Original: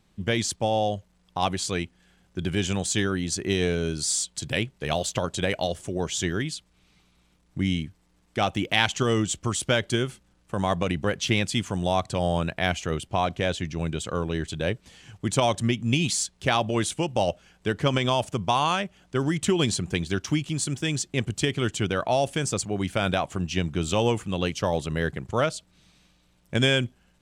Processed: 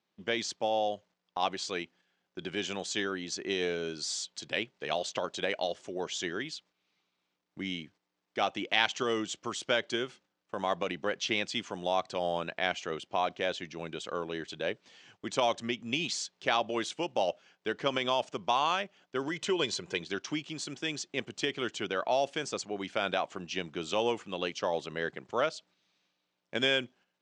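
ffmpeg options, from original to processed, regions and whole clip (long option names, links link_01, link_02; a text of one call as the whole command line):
ffmpeg -i in.wav -filter_complex "[0:a]asettb=1/sr,asplit=3[link_01][link_02][link_03];[link_01]atrim=end=19.284[link_04];[link_02]atrim=start=19.28:end=20.01,asetpts=PTS-STARTPTS,afade=type=in:duration=0.004:curve=qsin,afade=type=out:start_time=0.726:duration=0.004:curve=qsin,acompressor=mode=upward:threshold=-25dB:ratio=2.5:attack=3.2:release=140:knee=2.83:detection=peak,aecho=1:1:2:0.45,atrim=end_sample=32193[link_05];[link_03]atrim=start=20.006[link_06];[link_04][link_05]acrossfade=duration=0.004:curve1=hsin:curve2=qsin[link_07];[link_07][link_06]acrossfade=duration=0.004:curve1=qsin:curve2=hsin,highpass=330,agate=range=-8dB:threshold=-53dB:ratio=16:detection=peak,lowpass=frequency=6100:width=0.5412,lowpass=frequency=6100:width=1.3066,volume=-4.5dB" out.wav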